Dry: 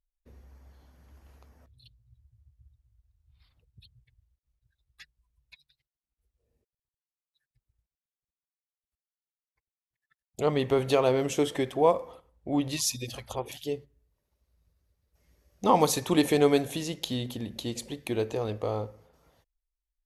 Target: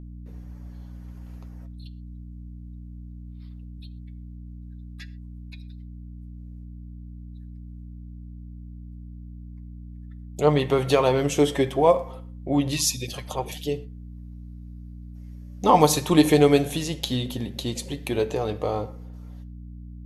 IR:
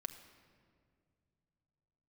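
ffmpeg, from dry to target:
-filter_complex "[0:a]flanger=delay=6.5:depth=1.1:regen=53:speed=0.37:shape=sinusoidal,aeval=exprs='val(0)+0.00447*(sin(2*PI*60*n/s)+sin(2*PI*2*60*n/s)/2+sin(2*PI*3*60*n/s)/3+sin(2*PI*4*60*n/s)/4+sin(2*PI*5*60*n/s)/5)':c=same,asplit=2[a][b];[1:a]atrim=start_sample=2205,afade=t=out:st=0.18:d=0.01,atrim=end_sample=8379[c];[b][c]afir=irnorm=-1:irlink=0,volume=3dB[d];[a][d]amix=inputs=2:normalize=0,volume=3dB"

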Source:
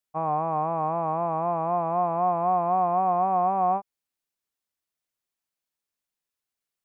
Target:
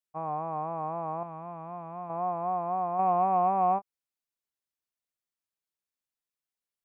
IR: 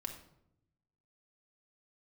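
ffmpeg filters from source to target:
-filter_complex "[0:a]asettb=1/sr,asplit=3[a][b][c];[a]atrim=end=1.234[d];[b]atrim=start=1.23:end=2.1,asetpts=PTS-STARTPTS,afade=t=in:d=0.004:c=qsin,afade=t=out:st=0.866:d=0.004:c=qsin,equalizer=f=580:w=0.46:g=-9[e];[c]atrim=start=2.096[f];[d][e]acrossfade=d=0.004:c1=hsin:c2=qsin[g];[g][f]acrossfade=d=0.004:c1=qsin:c2=hsin,asettb=1/sr,asplit=3[h][i][j];[h]atrim=end=2.994[k];[i]atrim=start=2.99:end=3.79,asetpts=PTS-STARTPTS,afade=t=in:d=0.004:c=qsin,afade=t=out:st=0.796:d=0.004:c=qsin,acontrast=35[l];[j]atrim=start=3.786[m];[k][l]acrossfade=d=0.004:c1=hsin:c2=qsin[n];[n][m]acrossfade=d=0.004:c1=qsin:c2=hsin,volume=-7dB"

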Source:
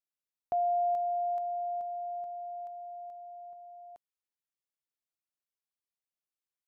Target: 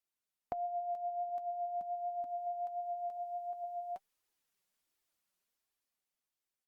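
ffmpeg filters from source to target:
-filter_complex "[0:a]asplit=2[a][b];[b]adelay=12,volume=-14dB[c];[a][c]amix=inputs=2:normalize=0,flanger=delay=2.2:depth=3.5:regen=41:speed=1.4:shape=triangular,asettb=1/sr,asplit=3[d][e][f];[d]atrim=end=1.294[g];[e]atrim=start=1.29:end=2.47,asetpts=PTS-STARTPTS,afade=t=in:d=0.004:c=qsin,afade=t=out:st=1.176:d=0.004:c=qsin,equalizer=f=125:t=o:w=1:g=5,equalizer=f=250:t=o:w=1:g=12,equalizer=f=500:t=o:w=1:g=-8[h];[f]atrim=start=2.466[i];[g][h]acrossfade=d=0.004:c1=hsin:c2=qsin[j];[j][i]acrossfade=d=0.004:c1=qsin:c2=hsin,dynaudnorm=f=240:g=11:m=9dB,asettb=1/sr,asplit=3[k][l][m];[k]atrim=end=3.174[n];[l]atrim=start=3.17:end=3.64,asetpts=PTS-STARTPTS,afade=t=in:d=0.004:c=qsin,afade=t=out:st=0.466:d=0.004:c=qsin,lowshelf=f=320:g=-11[o];[m]atrim=start=3.636[p];[n][o]acrossfade=d=0.004:c1=hsin:c2=qsin[q];[q][p]acrossfade=d=0.004:c1=qsin:c2=hsin,acompressor=threshold=-42dB:ratio=6,volume=5.5dB" -ar 48000 -c:a libopus -b:a 64k

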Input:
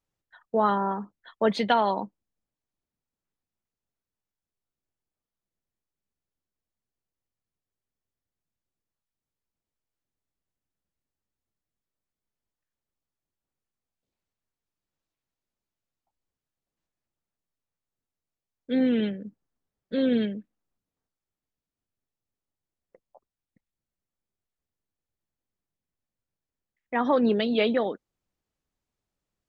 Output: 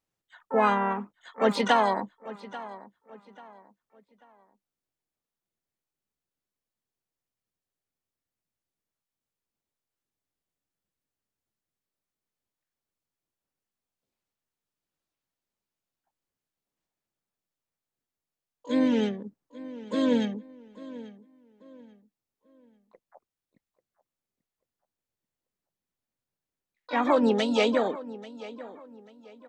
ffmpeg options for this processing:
-filter_complex "[0:a]lowshelf=f=72:g=-11,asplit=2[a][b];[b]adelay=839,lowpass=f=3k:p=1,volume=-17dB,asplit=2[c][d];[d]adelay=839,lowpass=f=3k:p=1,volume=0.33,asplit=2[e][f];[f]adelay=839,lowpass=f=3k:p=1,volume=0.33[g];[a][c][e][g]amix=inputs=4:normalize=0,asplit=3[h][i][j];[i]asetrate=52444,aresample=44100,atempo=0.840896,volume=-10dB[k];[j]asetrate=88200,aresample=44100,atempo=0.5,volume=-12dB[l];[h][k][l]amix=inputs=3:normalize=0"

